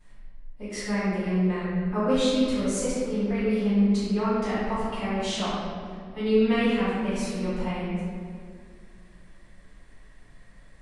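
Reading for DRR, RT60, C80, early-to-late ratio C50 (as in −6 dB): −15.0 dB, 2.1 s, −1.0 dB, −3.5 dB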